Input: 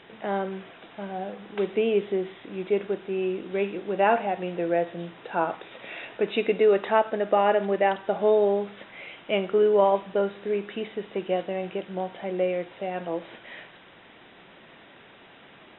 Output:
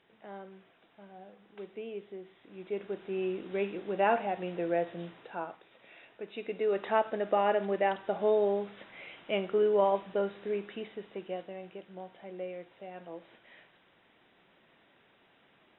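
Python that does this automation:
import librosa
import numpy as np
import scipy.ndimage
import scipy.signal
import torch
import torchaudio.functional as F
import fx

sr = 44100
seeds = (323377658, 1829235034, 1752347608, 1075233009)

y = fx.gain(x, sr, db=fx.line((2.25, -17.5), (3.16, -5.5), (5.07, -5.5), (5.61, -16.5), (6.3, -16.5), (6.92, -6.0), (10.49, -6.0), (11.7, -14.0)))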